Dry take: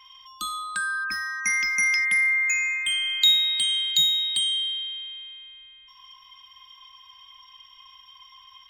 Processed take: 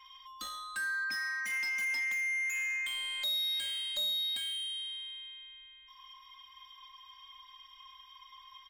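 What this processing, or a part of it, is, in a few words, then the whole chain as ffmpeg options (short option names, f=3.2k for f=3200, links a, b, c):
saturation between pre-emphasis and de-emphasis: -filter_complex "[0:a]highshelf=f=6.7k:g=8.5,asoftclip=type=tanh:threshold=-28dB,highshelf=f=6.7k:g=-8.5,asettb=1/sr,asplit=3[a][b][c];[a]atrim=end=0.904[d];[b]atrim=start=0.9:end=2,asetpts=PTS-STARTPTS,afade=t=in:d=0.004:c=qsin,afade=t=out:st=1.096:d=0.004:c=qsin,highpass=130[e];[c]atrim=start=1.996[f];[d][e]acrossfade=d=0.004:c1=hsin:c2=qsin[g];[g][f]acrossfade=d=0.004:c1=qsin:c2=hsin,aecho=1:1:3.7:0.93,aecho=1:1:133:0.0794,volume=-6.5dB"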